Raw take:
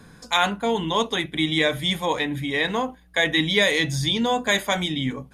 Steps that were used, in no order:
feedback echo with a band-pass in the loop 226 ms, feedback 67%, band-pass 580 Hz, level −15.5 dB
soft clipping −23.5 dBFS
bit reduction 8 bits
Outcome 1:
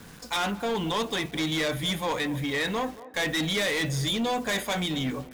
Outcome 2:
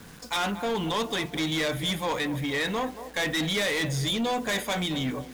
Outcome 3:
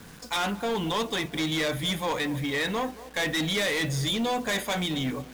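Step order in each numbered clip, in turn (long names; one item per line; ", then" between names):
bit reduction, then soft clipping, then feedback echo with a band-pass in the loop
feedback echo with a band-pass in the loop, then bit reduction, then soft clipping
soft clipping, then feedback echo with a band-pass in the loop, then bit reduction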